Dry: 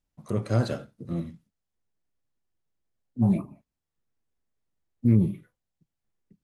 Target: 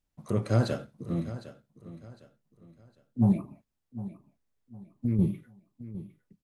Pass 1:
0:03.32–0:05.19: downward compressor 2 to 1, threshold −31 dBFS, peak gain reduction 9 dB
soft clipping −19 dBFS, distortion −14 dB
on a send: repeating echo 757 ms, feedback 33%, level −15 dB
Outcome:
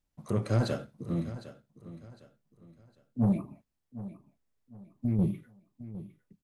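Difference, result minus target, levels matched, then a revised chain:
soft clipping: distortion +17 dB
0:03.32–0:05.19: downward compressor 2 to 1, threshold −31 dBFS, peak gain reduction 9 dB
soft clipping −8 dBFS, distortion −32 dB
on a send: repeating echo 757 ms, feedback 33%, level −15 dB

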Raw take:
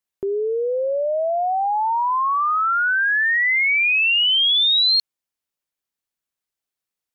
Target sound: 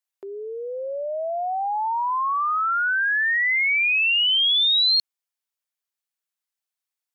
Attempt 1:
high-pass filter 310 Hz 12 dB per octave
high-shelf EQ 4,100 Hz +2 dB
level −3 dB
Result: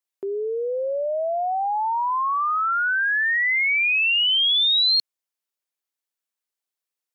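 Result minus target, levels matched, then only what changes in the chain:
250 Hz band +8.0 dB
change: high-pass filter 640 Hz 12 dB per octave

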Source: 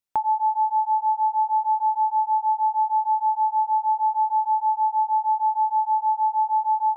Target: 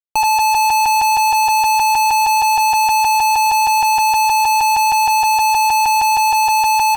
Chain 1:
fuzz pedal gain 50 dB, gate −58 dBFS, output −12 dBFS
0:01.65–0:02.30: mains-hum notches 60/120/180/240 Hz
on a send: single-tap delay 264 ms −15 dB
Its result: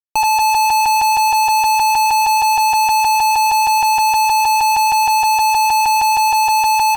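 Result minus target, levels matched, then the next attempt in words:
echo 155 ms early
fuzz pedal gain 50 dB, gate −58 dBFS, output −12 dBFS
0:01.65–0:02.30: mains-hum notches 60/120/180/240 Hz
on a send: single-tap delay 419 ms −15 dB

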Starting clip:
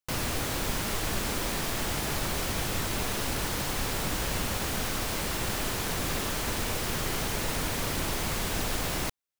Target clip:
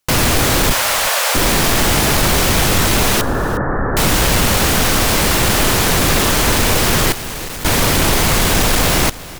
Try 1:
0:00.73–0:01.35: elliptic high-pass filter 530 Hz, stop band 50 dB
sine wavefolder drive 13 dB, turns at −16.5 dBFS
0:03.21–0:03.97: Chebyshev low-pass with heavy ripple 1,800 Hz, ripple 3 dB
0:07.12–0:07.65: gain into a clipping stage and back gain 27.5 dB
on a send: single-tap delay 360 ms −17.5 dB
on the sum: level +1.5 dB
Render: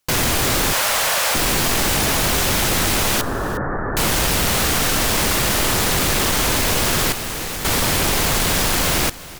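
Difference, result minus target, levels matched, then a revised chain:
sine wavefolder: distortion +15 dB
0:00.73–0:01.35: elliptic high-pass filter 530 Hz, stop band 50 dB
sine wavefolder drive 13 dB, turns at −9.5 dBFS
0:03.21–0:03.97: Chebyshev low-pass with heavy ripple 1,800 Hz, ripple 3 dB
0:07.12–0:07.65: gain into a clipping stage and back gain 27.5 dB
on a send: single-tap delay 360 ms −17.5 dB
on the sum: level +1.5 dB

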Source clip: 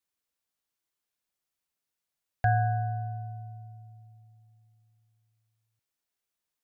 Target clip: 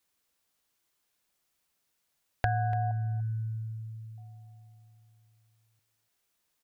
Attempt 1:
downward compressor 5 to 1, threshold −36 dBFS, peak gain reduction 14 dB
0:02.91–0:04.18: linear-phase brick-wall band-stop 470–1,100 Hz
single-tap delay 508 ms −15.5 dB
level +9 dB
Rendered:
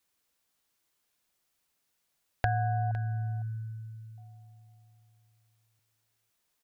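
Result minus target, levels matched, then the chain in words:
echo 217 ms late
downward compressor 5 to 1, threshold −36 dBFS, peak gain reduction 14 dB
0:02.91–0:04.18: linear-phase brick-wall band-stop 470–1,100 Hz
single-tap delay 291 ms −15.5 dB
level +9 dB

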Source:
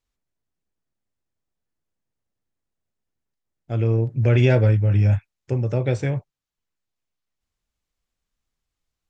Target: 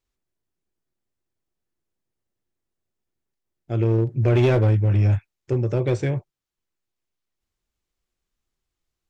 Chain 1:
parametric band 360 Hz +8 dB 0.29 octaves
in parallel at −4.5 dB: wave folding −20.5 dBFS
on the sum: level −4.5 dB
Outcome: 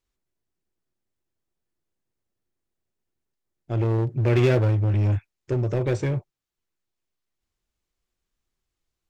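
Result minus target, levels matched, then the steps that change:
wave folding: distortion +14 dB
change: wave folding −14 dBFS

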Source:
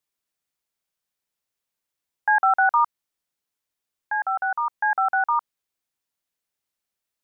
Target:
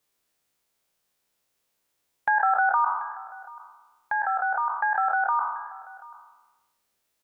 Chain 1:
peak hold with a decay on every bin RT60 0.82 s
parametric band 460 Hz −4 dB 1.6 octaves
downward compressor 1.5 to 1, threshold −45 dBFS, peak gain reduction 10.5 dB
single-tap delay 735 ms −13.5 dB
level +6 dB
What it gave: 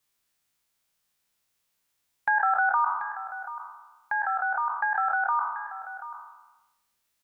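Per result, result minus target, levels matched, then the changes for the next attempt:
echo-to-direct +7.5 dB; 500 Hz band −2.0 dB
change: single-tap delay 735 ms −21 dB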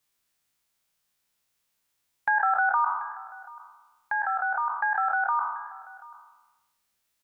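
500 Hz band −3.0 dB
change: parametric band 460 Hz +3.5 dB 1.6 octaves

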